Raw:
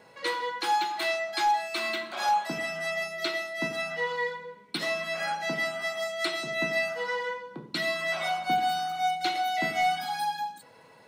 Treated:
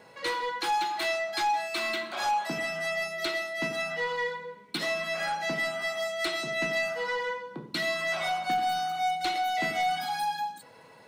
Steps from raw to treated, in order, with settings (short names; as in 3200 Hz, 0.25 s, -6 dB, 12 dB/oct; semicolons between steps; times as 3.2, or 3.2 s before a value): soft clip -24 dBFS, distortion -15 dB; gain +1.5 dB